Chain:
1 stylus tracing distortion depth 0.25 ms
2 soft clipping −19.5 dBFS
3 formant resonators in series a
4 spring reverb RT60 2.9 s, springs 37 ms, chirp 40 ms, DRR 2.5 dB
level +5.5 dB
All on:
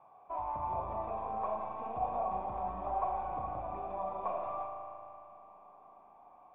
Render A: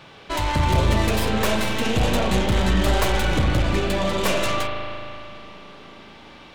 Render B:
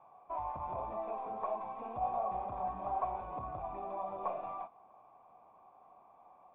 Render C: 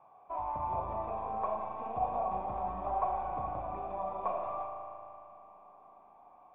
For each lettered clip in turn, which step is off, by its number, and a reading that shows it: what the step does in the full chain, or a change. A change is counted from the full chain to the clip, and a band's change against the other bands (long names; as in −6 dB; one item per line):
3, 1 kHz band −20.0 dB
4, change in momentary loudness spread −11 LU
2, distortion level −18 dB